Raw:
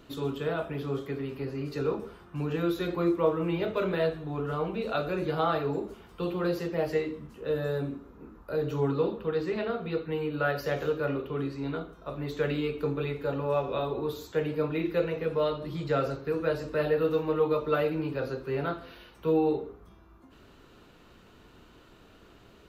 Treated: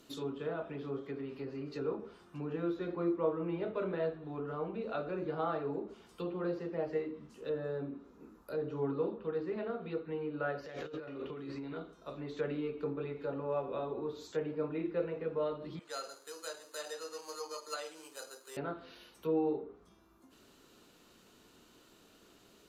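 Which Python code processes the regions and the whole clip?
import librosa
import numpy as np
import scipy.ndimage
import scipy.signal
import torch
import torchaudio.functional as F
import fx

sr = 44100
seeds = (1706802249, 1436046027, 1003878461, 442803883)

y = fx.chain(x, sr, fx.peak_eq(hz=2000.0, db=3.5, octaves=0.39),
    fx.over_compress(threshold_db=-36.0, ratio=-1.0), at=(10.66, 11.77))
y = fx.chain(y, sr, fx.highpass(hz=910.0, slope=12),
    fx.peak_eq(hz=4900.0, db=-9.5, octaves=1.9),
    fx.resample_bad(factor=8, down='none', up='hold'), at=(15.79, 18.57))
y = fx.peak_eq(y, sr, hz=210.0, db=7.0, octaves=1.6)
y = fx.env_lowpass_down(y, sr, base_hz=1700.0, full_db=-24.5)
y = fx.bass_treble(y, sr, bass_db=-9, treble_db=14)
y = y * librosa.db_to_amplitude(-8.0)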